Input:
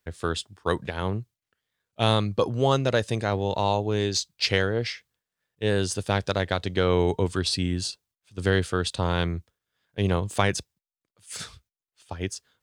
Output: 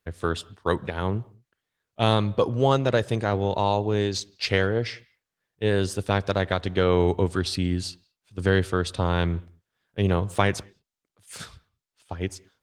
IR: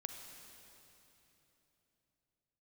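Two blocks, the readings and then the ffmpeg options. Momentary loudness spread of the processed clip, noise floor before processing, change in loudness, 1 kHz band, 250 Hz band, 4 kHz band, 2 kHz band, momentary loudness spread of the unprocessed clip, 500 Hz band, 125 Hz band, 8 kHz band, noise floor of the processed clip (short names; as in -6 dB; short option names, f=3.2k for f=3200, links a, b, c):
14 LU, under -85 dBFS, +1.0 dB, +1.5 dB, +1.5 dB, -2.5 dB, +0.5 dB, 13 LU, +1.5 dB, +1.5 dB, -4.5 dB, under -85 dBFS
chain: -filter_complex "[0:a]highshelf=f=7.1k:g=-4,asplit=2[a][b];[1:a]atrim=start_sample=2205,afade=t=out:st=0.27:d=0.01,atrim=end_sample=12348,lowpass=2.9k[c];[b][c]afir=irnorm=-1:irlink=0,volume=-9.5dB[d];[a][d]amix=inputs=2:normalize=0" -ar 48000 -c:a libopus -b:a 20k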